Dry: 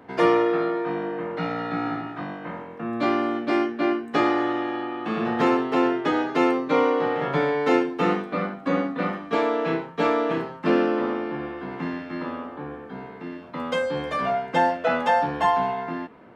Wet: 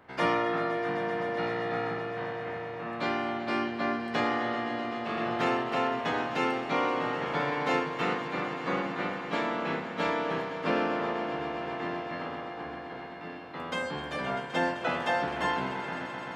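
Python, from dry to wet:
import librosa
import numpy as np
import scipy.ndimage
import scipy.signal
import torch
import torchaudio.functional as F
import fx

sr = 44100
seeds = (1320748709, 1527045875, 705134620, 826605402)

y = fx.spec_clip(x, sr, under_db=13)
y = fx.echo_swell(y, sr, ms=129, loudest=5, wet_db=-14.5)
y = F.gain(torch.from_numpy(y), -8.0).numpy()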